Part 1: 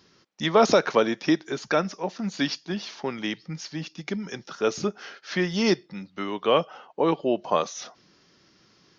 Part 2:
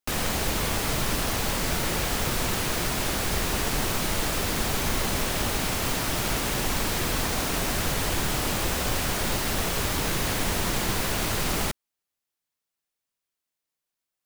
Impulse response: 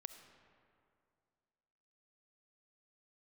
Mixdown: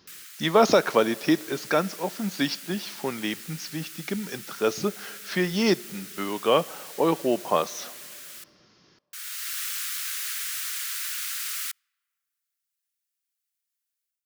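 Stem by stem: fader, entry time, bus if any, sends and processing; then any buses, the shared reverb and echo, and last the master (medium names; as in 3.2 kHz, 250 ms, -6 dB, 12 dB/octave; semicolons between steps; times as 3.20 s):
-1.5 dB, 0.00 s, send -8.5 dB, none
-16.5 dB, 0.00 s, muted 8.44–9.13 s, send -23.5 dB, steep high-pass 1.3 kHz 48 dB/octave; treble shelf 5.6 kHz +8.5 dB; level rider gain up to 12 dB; auto duck -12 dB, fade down 0.60 s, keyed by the first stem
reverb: on, RT60 2.3 s, pre-delay 25 ms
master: none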